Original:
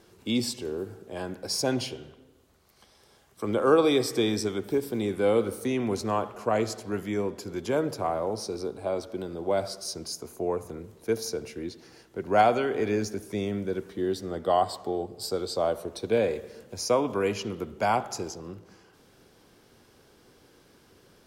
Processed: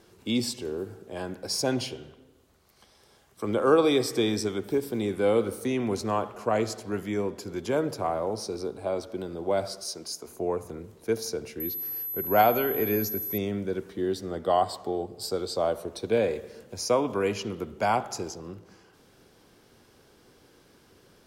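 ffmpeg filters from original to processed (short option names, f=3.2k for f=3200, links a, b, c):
-filter_complex "[0:a]asettb=1/sr,asplit=3[a][b][c];[a]atrim=end=9.844[d];[b]atrim=start=9.84:end=10.28,asetpts=PTS-STARTPTS,afade=t=in:d=0.004:c=qsin,afade=t=out:st=0.436:d=0.004:c=qsin,highpass=f=330:p=1[e];[c]atrim=start=10.276[f];[d][e]acrossfade=d=0.004:c1=hsin:c2=qsin[g];[g][f]acrossfade=d=0.004:c1=qsin:c2=hsin,asettb=1/sr,asplit=3[h][i][j];[h]atrim=end=11.604[k];[i]atrim=start=11.6:end=13.38,asetpts=PTS-STARTPTS,afade=t=in:d=0.004:c=qsin,afade=t=out:st=1.776:d=0.004:c=qsin,aeval=exprs='val(0)+0.0282*sin(2*PI*12000*n/s)':c=same[l];[j]atrim=start=13.376[m];[k][l]acrossfade=d=0.004:c1=hsin:c2=qsin[n];[n][m]acrossfade=d=0.004:c1=qsin:c2=hsin"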